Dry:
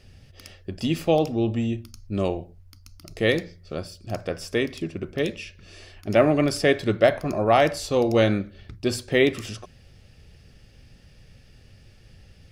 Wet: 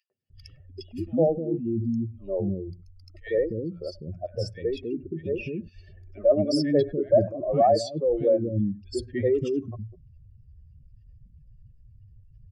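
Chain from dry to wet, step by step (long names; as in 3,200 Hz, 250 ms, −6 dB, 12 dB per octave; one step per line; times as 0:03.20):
expanding power law on the bin magnitudes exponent 2.5
three-band delay without the direct sound highs, mids, lows 100/300 ms, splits 340/1,600 Hz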